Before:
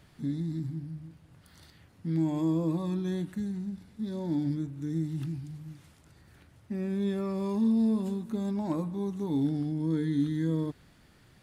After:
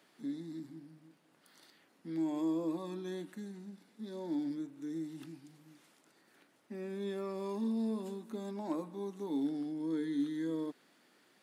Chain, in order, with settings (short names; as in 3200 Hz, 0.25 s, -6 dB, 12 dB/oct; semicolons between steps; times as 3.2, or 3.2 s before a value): HPF 250 Hz 24 dB/oct; gain -4 dB